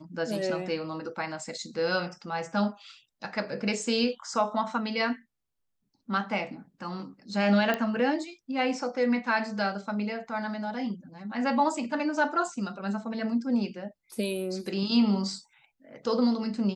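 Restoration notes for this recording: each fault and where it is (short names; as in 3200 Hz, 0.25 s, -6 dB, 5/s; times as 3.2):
7.74 pop -14 dBFS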